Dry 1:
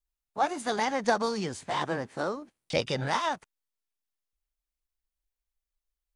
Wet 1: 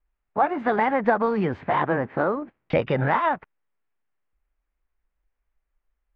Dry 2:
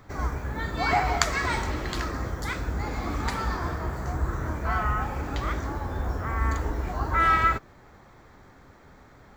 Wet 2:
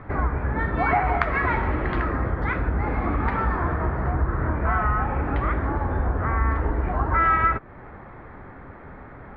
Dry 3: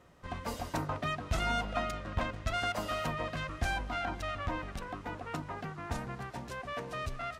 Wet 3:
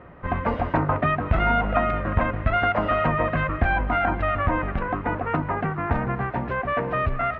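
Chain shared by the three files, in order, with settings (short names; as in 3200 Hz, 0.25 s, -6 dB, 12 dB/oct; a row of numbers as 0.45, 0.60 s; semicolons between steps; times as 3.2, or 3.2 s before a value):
LPF 2200 Hz 24 dB/oct; compressor 2:1, threshold -34 dBFS; match loudness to -24 LUFS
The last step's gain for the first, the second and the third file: +12.0, +10.5, +15.0 dB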